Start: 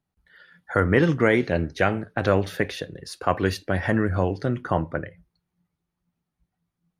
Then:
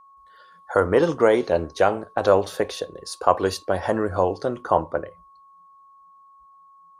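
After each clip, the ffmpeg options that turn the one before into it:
ffmpeg -i in.wav -af "equalizer=frequency=125:width_type=o:width=1:gain=-10,equalizer=frequency=250:width_type=o:width=1:gain=-3,equalizer=frequency=500:width_type=o:width=1:gain=6,equalizer=frequency=1000:width_type=o:width=1:gain=9,equalizer=frequency=2000:width_type=o:width=1:gain=-10,equalizer=frequency=4000:width_type=o:width=1:gain=3,equalizer=frequency=8000:width_type=o:width=1:gain=8,aeval=exprs='val(0)+0.00398*sin(2*PI*1100*n/s)':channel_layout=same,volume=-1dB" out.wav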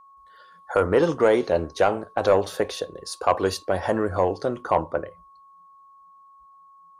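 ffmpeg -i in.wav -af "asoftclip=type=tanh:threshold=-7.5dB" out.wav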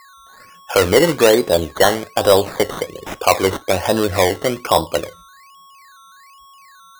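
ffmpeg -i in.wav -af "acrusher=samples=14:mix=1:aa=0.000001:lfo=1:lforange=8.4:lforate=1.2,volume=6.5dB" out.wav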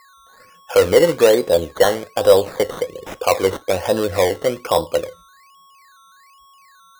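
ffmpeg -i in.wav -af "equalizer=frequency=500:width=5:gain=8.5,volume=-4.5dB" out.wav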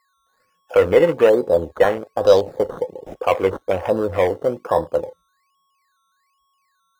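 ffmpeg -i in.wav -af "afwtdn=0.0398,volume=-1dB" out.wav

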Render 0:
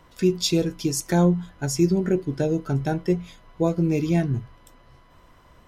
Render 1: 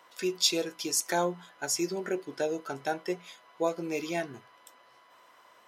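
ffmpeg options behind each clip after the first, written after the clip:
ffmpeg -i in.wav -af "highpass=600" out.wav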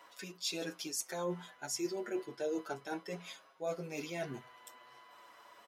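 ffmpeg -i in.wav -filter_complex "[0:a]areverse,acompressor=threshold=-35dB:ratio=6,areverse,asplit=2[link_01][link_02];[link_02]adelay=6.7,afreqshift=-0.36[link_03];[link_01][link_03]amix=inputs=2:normalize=1,volume=3dB" out.wav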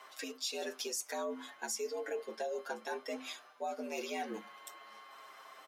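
ffmpeg -i in.wav -af "acompressor=threshold=-39dB:ratio=6,afreqshift=84,volume=4dB" out.wav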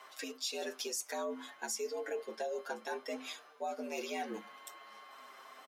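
ffmpeg -i in.wav -filter_complex "[0:a]asplit=2[link_01][link_02];[link_02]adelay=1399,volume=-30dB,highshelf=frequency=4000:gain=-31.5[link_03];[link_01][link_03]amix=inputs=2:normalize=0" out.wav

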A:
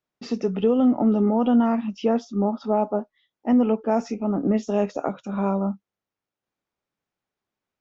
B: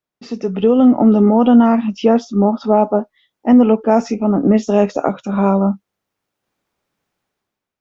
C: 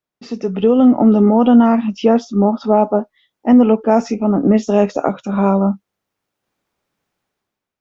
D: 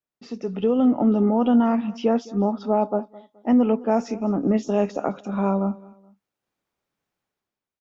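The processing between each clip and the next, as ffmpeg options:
ffmpeg -i in.wav -af "dynaudnorm=framelen=160:gausssize=7:maxgain=12dB" out.wav
ffmpeg -i in.wav -af anull out.wav
ffmpeg -i in.wav -af "aecho=1:1:212|424:0.0891|0.0294,volume=-8dB" out.wav

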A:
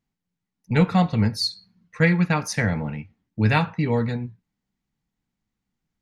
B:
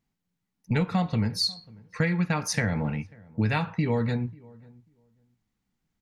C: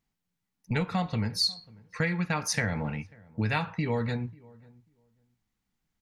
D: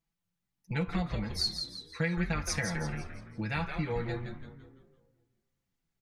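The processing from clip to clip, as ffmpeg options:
ffmpeg -i in.wav -filter_complex "[0:a]acompressor=threshold=-23dB:ratio=6,asplit=2[link_01][link_02];[link_02]adelay=541,lowpass=frequency=1100:poles=1,volume=-23.5dB,asplit=2[link_03][link_04];[link_04]adelay=541,lowpass=frequency=1100:poles=1,volume=0.17[link_05];[link_01][link_03][link_05]amix=inputs=3:normalize=0,volume=1.5dB" out.wav
ffmpeg -i in.wav -af "equalizer=frequency=200:width_type=o:width=2.9:gain=-4.5" out.wav
ffmpeg -i in.wav -filter_complex "[0:a]aecho=1:1:6:0.82,asplit=2[link_01][link_02];[link_02]asplit=5[link_03][link_04][link_05][link_06][link_07];[link_03]adelay=169,afreqshift=-130,volume=-6.5dB[link_08];[link_04]adelay=338,afreqshift=-260,volume=-14dB[link_09];[link_05]adelay=507,afreqshift=-390,volume=-21.6dB[link_10];[link_06]adelay=676,afreqshift=-520,volume=-29.1dB[link_11];[link_07]adelay=845,afreqshift=-650,volume=-36.6dB[link_12];[link_08][link_09][link_10][link_11][link_12]amix=inputs=5:normalize=0[link_13];[link_01][link_13]amix=inputs=2:normalize=0,volume=-7dB" out.wav

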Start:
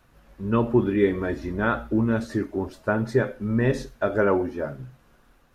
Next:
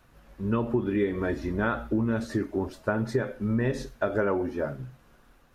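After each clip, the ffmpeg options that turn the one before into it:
ffmpeg -i in.wav -af "acompressor=threshold=-22dB:ratio=6" out.wav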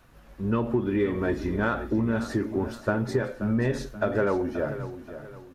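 ffmpeg -i in.wav -filter_complex "[0:a]asplit=2[link_01][link_02];[link_02]asoftclip=type=tanh:threshold=-31dB,volume=-10dB[link_03];[link_01][link_03]amix=inputs=2:normalize=0,aecho=1:1:530|1060|1590|2120:0.237|0.0877|0.0325|0.012" out.wav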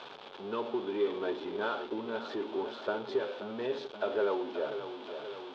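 ffmpeg -i in.wav -af "aeval=exprs='val(0)+0.5*0.0299*sgn(val(0))':channel_layout=same,highpass=410,equalizer=frequency=420:width_type=q:width=4:gain=8,equalizer=frequency=880:width_type=q:width=4:gain=5,equalizer=frequency=1900:width_type=q:width=4:gain=-9,equalizer=frequency=3400:width_type=q:width=4:gain=9,lowpass=frequency=4100:width=0.5412,lowpass=frequency=4100:width=1.3066,volume=-8.5dB" out.wav

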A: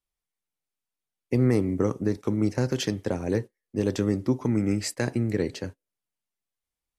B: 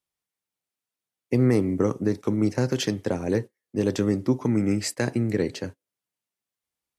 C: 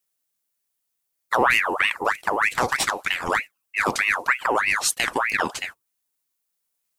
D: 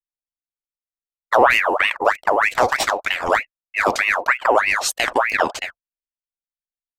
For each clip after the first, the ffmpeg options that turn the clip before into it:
ffmpeg -i in.wav -af "highpass=91,volume=2dB" out.wav
ffmpeg -i in.wav -af "aemphasis=mode=production:type=50kf,aeval=exprs='val(0)*sin(2*PI*1500*n/s+1500*0.6/3.2*sin(2*PI*3.2*n/s))':channel_layout=same,volume=3.5dB" out.wav
ffmpeg -i in.wav -af "anlmdn=0.398,equalizer=frequency=160:width_type=o:width=0.67:gain=-8,equalizer=frequency=630:width_type=o:width=0.67:gain=9,equalizer=frequency=10000:width_type=o:width=0.67:gain=-7,volume=2.5dB" out.wav

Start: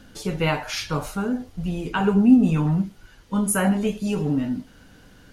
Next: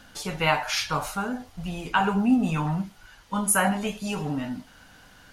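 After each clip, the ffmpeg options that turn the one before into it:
ffmpeg -i in.wav -af "lowshelf=frequency=570:width_type=q:width=1.5:gain=-7.5,volume=2dB" out.wav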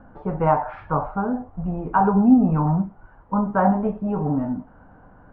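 ffmpeg -i in.wav -af "lowpass=frequency=1100:width=0.5412,lowpass=frequency=1100:width=1.3066,volume=6.5dB" out.wav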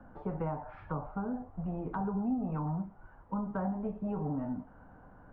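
ffmpeg -i in.wav -filter_complex "[0:a]acrossover=split=120|410[link_01][link_02][link_03];[link_01]acompressor=threshold=-39dB:ratio=4[link_04];[link_02]acompressor=threshold=-30dB:ratio=4[link_05];[link_03]acompressor=threshold=-35dB:ratio=4[link_06];[link_04][link_05][link_06]amix=inputs=3:normalize=0,volume=-6dB" out.wav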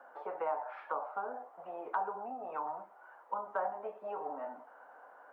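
ffmpeg -i in.wav -af "highpass=frequency=520:width=0.5412,highpass=frequency=520:width=1.3066,volume=4.5dB" out.wav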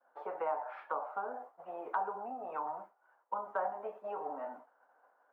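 ffmpeg -i in.wav -af "agate=range=-33dB:threshold=-46dB:ratio=3:detection=peak" out.wav

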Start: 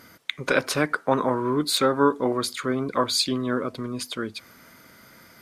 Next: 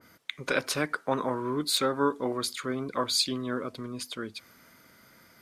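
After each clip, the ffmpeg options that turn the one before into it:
ffmpeg -i in.wav -af "adynamicequalizer=threshold=0.02:dfrequency=2100:dqfactor=0.7:tfrequency=2100:tqfactor=0.7:attack=5:release=100:ratio=0.375:range=2:mode=boostabove:tftype=highshelf,volume=-6.5dB" out.wav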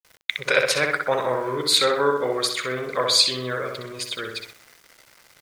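ffmpeg -i in.wav -filter_complex "[0:a]equalizer=frequency=125:width_type=o:width=1:gain=3,equalizer=frequency=250:width_type=o:width=1:gain=-10,equalizer=frequency=500:width_type=o:width=1:gain=9,equalizer=frequency=2000:width_type=o:width=1:gain=10,equalizer=frequency=4000:width_type=o:width=1:gain=6,equalizer=frequency=8000:width_type=o:width=1:gain=6,asplit=2[link_01][link_02];[link_02]adelay=63,lowpass=frequency=3300:poles=1,volume=-3.5dB,asplit=2[link_03][link_04];[link_04]adelay=63,lowpass=frequency=3300:poles=1,volume=0.54,asplit=2[link_05][link_06];[link_06]adelay=63,lowpass=frequency=3300:poles=1,volume=0.54,asplit=2[link_07][link_08];[link_08]adelay=63,lowpass=frequency=3300:poles=1,volume=0.54,asplit=2[link_09][link_10];[link_10]adelay=63,lowpass=frequency=3300:poles=1,volume=0.54,asplit=2[link_11][link_12];[link_12]adelay=63,lowpass=frequency=3300:poles=1,volume=0.54,asplit=2[link_13][link_14];[link_14]adelay=63,lowpass=frequency=3300:poles=1,volume=0.54[link_15];[link_01][link_03][link_05][link_07][link_09][link_11][link_13][link_15]amix=inputs=8:normalize=0,aeval=exprs='val(0)*gte(abs(val(0)),0.00668)':channel_layout=same" out.wav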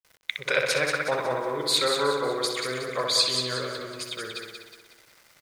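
ffmpeg -i in.wav -af "aecho=1:1:183|366|549|732|915:0.501|0.21|0.0884|0.0371|0.0156,volume=-5dB" out.wav

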